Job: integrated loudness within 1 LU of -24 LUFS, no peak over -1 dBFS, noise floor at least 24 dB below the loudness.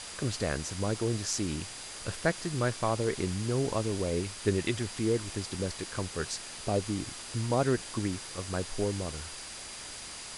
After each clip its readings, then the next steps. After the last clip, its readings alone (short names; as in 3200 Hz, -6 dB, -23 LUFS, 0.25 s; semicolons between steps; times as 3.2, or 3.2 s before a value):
steady tone 4800 Hz; tone level -50 dBFS; noise floor -43 dBFS; noise floor target -57 dBFS; loudness -32.5 LUFS; peak -13.0 dBFS; loudness target -24.0 LUFS
-> notch 4800 Hz, Q 30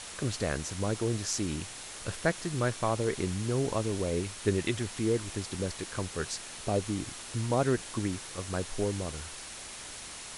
steady tone none; noise floor -44 dBFS; noise floor target -57 dBFS
-> denoiser 13 dB, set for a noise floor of -44 dBFS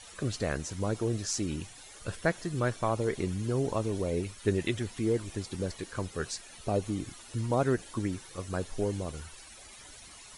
noise floor -50 dBFS; noise floor target -57 dBFS
-> denoiser 7 dB, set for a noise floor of -50 dBFS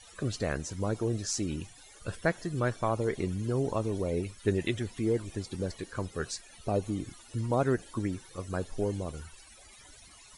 noise floor -54 dBFS; noise floor target -57 dBFS
-> denoiser 6 dB, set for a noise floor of -54 dBFS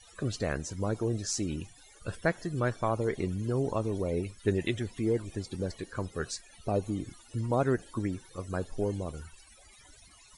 noise floor -57 dBFS; loudness -33.0 LUFS; peak -13.5 dBFS; loudness target -24.0 LUFS
-> gain +9 dB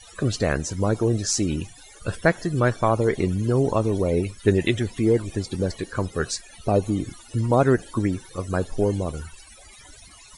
loudness -24.0 LUFS; peak -4.5 dBFS; noise floor -48 dBFS